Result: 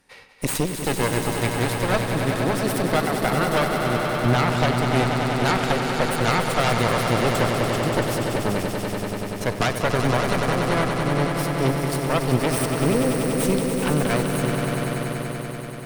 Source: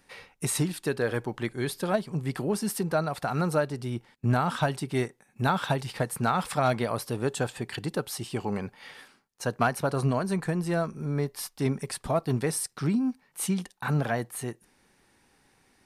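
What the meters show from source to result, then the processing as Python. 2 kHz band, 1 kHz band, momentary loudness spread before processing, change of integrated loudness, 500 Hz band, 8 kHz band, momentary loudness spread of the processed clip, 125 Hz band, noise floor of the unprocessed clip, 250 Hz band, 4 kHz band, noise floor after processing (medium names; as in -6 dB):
+9.5 dB, +7.5 dB, 8 LU, +7.0 dB, +7.5 dB, +5.0 dB, 6 LU, +6.5 dB, -66 dBFS, +6.5 dB, +10.5 dB, -32 dBFS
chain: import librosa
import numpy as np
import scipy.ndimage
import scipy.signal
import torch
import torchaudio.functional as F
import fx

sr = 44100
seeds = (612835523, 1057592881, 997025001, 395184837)

y = fx.cheby_harmonics(x, sr, harmonics=(6,), levels_db=(-8,), full_scale_db=-12.5)
y = fx.echo_swell(y, sr, ms=96, loudest=5, wet_db=-8.0)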